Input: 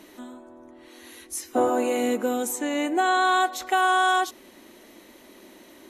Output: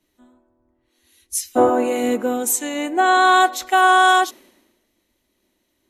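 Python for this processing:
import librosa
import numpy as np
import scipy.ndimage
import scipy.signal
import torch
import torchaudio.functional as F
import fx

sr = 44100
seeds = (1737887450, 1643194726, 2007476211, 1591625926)

y = fx.band_widen(x, sr, depth_pct=100)
y = y * 10.0 ** (5.5 / 20.0)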